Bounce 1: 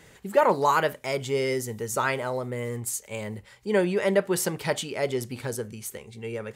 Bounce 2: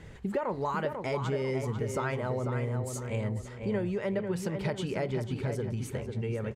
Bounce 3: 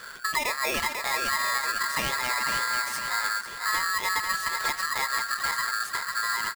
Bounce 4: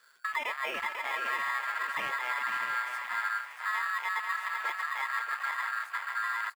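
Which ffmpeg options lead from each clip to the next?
-filter_complex "[0:a]aemphasis=mode=reproduction:type=bsi,acompressor=threshold=0.0355:ratio=6,asplit=2[s0][s1];[s1]adelay=495,lowpass=f=3200:p=1,volume=0.501,asplit=2[s2][s3];[s3]adelay=495,lowpass=f=3200:p=1,volume=0.42,asplit=2[s4][s5];[s5]adelay=495,lowpass=f=3200:p=1,volume=0.42,asplit=2[s6][s7];[s7]adelay=495,lowpass=f=3200:p=1,volume=0.42,asplit=2[s8][s9];[s9]adelay=495,lowpass=f=3200:p=1,volume=0.42[s10];[s2][s4][s6][s8][s10]amix=inputs=5:normalize=0[s11];[s0][s11]amix=inputs=2:normalize=0"
-filter_complex "[0:a]asplit=2[s0][s1];[s1]alimiter=level_in=1.5:limit=0.0631:level=0:latency=1:release=171,volume=0.668,volume=0.891[s2];[s0][s2]amix=inputs=2:normalize=0,aeval=exprs='val(0)*sgn(sin(2*PI*1500*n/s))':c=same"
-filter_complex "[0:a]afwtdn=0.0282,highpass=f=680:p=1,asplit=2[s0][s1];[s1]aecho=0:1:633:0.376[s2];[s0][s2]amix=inputs=2:normalize=0,volume=0.668"

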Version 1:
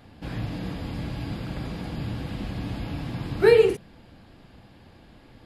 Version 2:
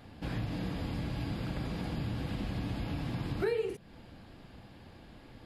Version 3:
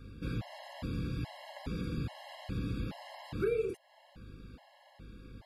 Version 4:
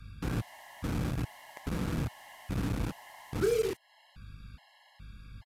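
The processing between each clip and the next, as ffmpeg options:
-af "acompressor=threshold=0.0316:ratio=4,volume=0.841"
-af "aeval=exprs='val(0)+0.00282*(sin(2*PI*50*n/s)+sin(2*PI*2*50*n/s)/2+sin(2*PI*3*50*n/s)/3+sin(2*PI*4*50*n/s)/4+sin(2*PI*5*50*n/s)/5)':c=same,afftfilt=real='re*gt(sin(2*PI*1.2*pts/sr)*(1-2*mod(floor(b*sr/1024/550),2)),0)':imag='im*gt(sin(2*PI*1.2*pts/sr)*(1-2*mod(floor(b*sr/1024/550),2)),0)':win_size=1024:overlap=0.75"
-filter_complex "[0:a]acrossover=split=190|820|2600[s0][s1][s2][s3];[s1]acrusher=bits=6:mix=0:aa=0.000001[s4];[s3]aeval=exprs='(mod(794*val(0)+1,2)-1)/794':c=same[s5];[s0][s4][s2][s5]amix=inputs=4:normalize=0,aresample=32000,aresample=44100,volume=1.5"

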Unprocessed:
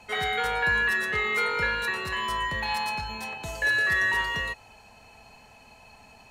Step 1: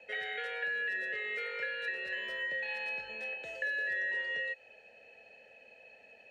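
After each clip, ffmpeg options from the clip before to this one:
-filter_complex "[0:a]asplit=3[s0][s1][s2];[s0]bandpass=f=530:t=q:w=8,volume=1[s3];[s1]bandpass=f=1840:t=q:w=8,volume=0.501[s4];[s2]bandpass=f=2480:t=q:w=8,volume=0.355[s5];[s3][s4][s5]amix=inputs=3:normalize=0,acrossover=split=950|3600[s6][s7][s8];[s6]acompressor=threshold=0.002:ratio=4[s9];[s7]acompressor=threshold=0.00708:ratio=4[s10];[s8]acompressor=threshold=0.00126:ratio=4[s11];[s9][s10][s11]amix=inputs=3:normalize=0,volume=2.24"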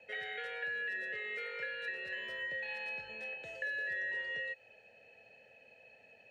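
-af "equalizer=f=120:w=1.3:g=9,volume=0.668"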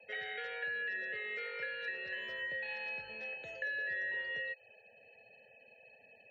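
-af "afftfilt=real='re*gte(hypot(re,im),0.000708)':imag='im*gte(hypot(re,im),0.000708)':win_size=1024:overlap=0.75"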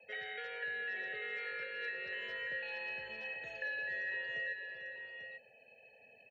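-af "aecho=1:1:445|843:0.335|0.422,volume=0.794"

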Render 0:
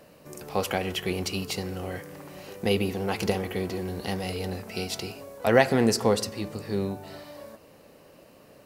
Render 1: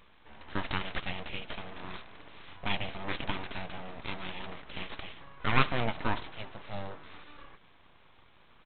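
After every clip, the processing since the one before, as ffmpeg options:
-af "highpass=f=250:p=1,tiltshelf=f=970:g=-3.5,aresample=8000,aeval=exprs='abs(val(0))':c=same,aresample=44100,volume=0.794"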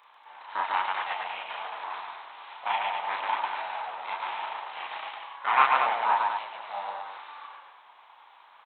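-filter_complex "[0:a]acrossover=split=3200[s0][s1];[s1]acompressor=threshold=0.002:ratio=4:attack=1:release=60[s2];[s0][s2]amix=inputs=2:normalize=0,highpass=f=880:t=q:w=4,aecho=1:1:34.99|142.9|236.2:1|0.891|0.562,volume=0.841"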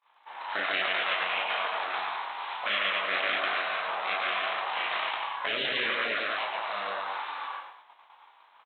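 -filter_complex "[0:a]afftfilt=real='re*lt(hypot(re,im),0.0708)':imag='im*lt(hypot(re,im),0.0708)':win_size=1024:overlap=0.75,agate=range=0.0224:threshold=0.00562:ratio=3:detection=peak,asplit=2[s0][s1];[s1]adelay=21,volume=0.422[s2];[s0][s2]amix=inputs=2:normalize=0,volume=2.51"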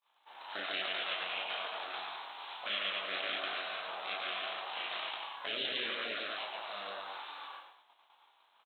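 -af "equalizer=f=125:t=o:w=1:g=-11,equalizer=f=250:t=o:w=1:g=-3,equalizer=f=500:t=o:w=1:g=-5,equalizer=f=1000:t=o:w=1:g=-9,equalizer=f=2000:t=o:w=1:g=-10"

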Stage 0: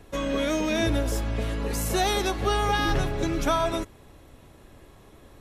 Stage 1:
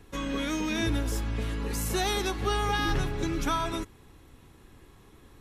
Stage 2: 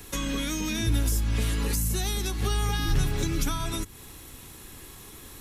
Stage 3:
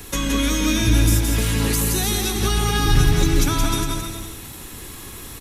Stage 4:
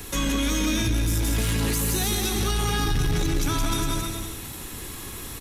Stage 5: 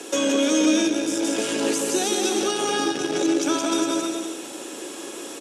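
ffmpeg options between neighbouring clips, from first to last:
-af "equalizer=f=610:w=3.8:g=-12,volume=0.75"
-filter_complex "[0:a]crystalizer=i=4.5:c=0,acrossover=split=220[s0][s1];[s1]acompressor=threshold=0.0141:ratio=6[s2];[s0][s2]amix=inputs=2:normalize=0,volume=1.88"
-af "aecho=1:1:170|306|414.8|501.8|571.5:0.631|0.398|0.251|0.158|0.1,volume=2.24"
-af "alimiter=limit=0.211:level=0:latency=1:release=29,asoftclip=type=tanh:threshold=0.158"
-af "highpass=f=280:w=0.5412,highpass=f=280:w=1.3066,equalizer=f=330:t=q:w=4:g=6,equalizer=f=570:t=q:w=4:g=9,equalizer=f=1100:t=q:w=4:g=-6,equalizer=f=2000:t=q:w=4:g=-9,equalizer=f=4100:t=q:w=4:g=-7,lowpass=f=8500:w=0.5412,lowpass=f=8500:w=1.3066,volume=1.78"

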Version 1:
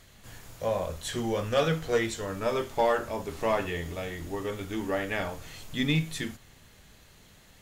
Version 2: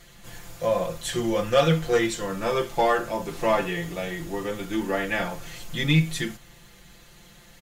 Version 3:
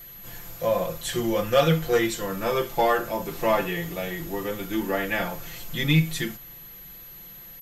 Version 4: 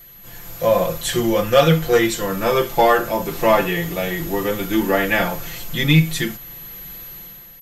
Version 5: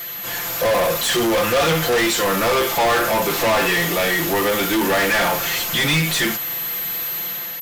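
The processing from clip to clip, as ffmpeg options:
-af "aecho=1:1:5.8:0.95,volume=1.26"
-af "aeval=exprs='val(0)+0.00794*sin(2*PI*12000*n/s)':c=same"
-af "dynaudnorm=f=110:g=9:m=2.66"
-filter_complex "[0:a]asplit=2[s0][s1];[s1]highpass=f=720:p=1,volume=56.2,asoftclip=type=tanh:threshold=0.794[s2];[s0][s2]amix=inputs=2:normalize=0,lowpass=f=6100:p=1,volume=0.501,volume=0.355"

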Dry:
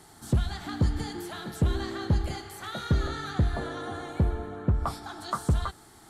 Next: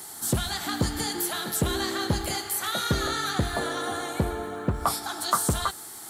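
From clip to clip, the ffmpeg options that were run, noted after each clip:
-af "aemphasis=mode=production:type=bsi,volume=2.11"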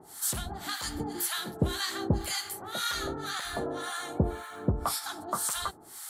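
-filter_complex "[0:a]acrossover=split=910[s0][s1];[s0]aeval=exprs='val(0)*(1-1/2+1/2*cos(2*PI*1.9*n/s))':c=same[s2];[s1]aeval=exprs='val(0)*(1-1/2-1/2*cos(2*PI*1.9*n/s))':c=same[s3];[s2][s3]amix=inputs=2:normalize=0"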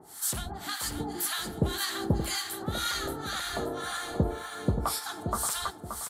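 -af "aecho=1:1:577|1154|1731|2308:0.422|0.148|0.0517|0.0181"

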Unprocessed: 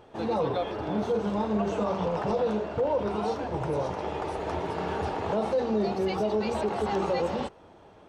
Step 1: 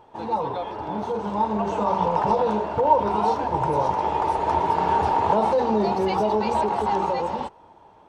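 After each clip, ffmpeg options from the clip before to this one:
-af "equalizer=f=920:w=4.1:g=14,dynaudnorm=f=290:g=11:m=2.37,volume=0.708"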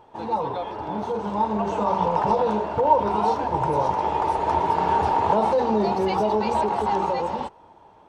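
-af anull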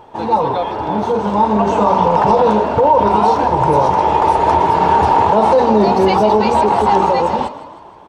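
-filter_complex "[0:a]asplit=6[s0][s1][s2][s3][s4][s5];[s1]adelay=156,afreqshift=37,volume=0.178[s6];[s2]adelay=312,afreqshift=74,volume=0.0871[s7];[s3]adelay=468,afreqshift=111,volume=0.0427[s8];[s4]adelay=624,afreqshift=148,volume=0.0209[s9];[s5]adelay=780,afreqshift=185,volume=0.0102[s10];[s0][s6][s7][s8][s9][s10]amix=inputs=6:normalize=0,alimiter=level_in=4.22:limit=0.891:release=50:level=0:latency=1,volume=0.794"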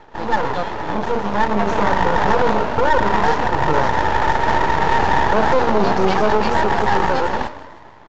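-af "aeval=exprs='max(val(0),0)':c=same,aresample=16000,aresample=44100"

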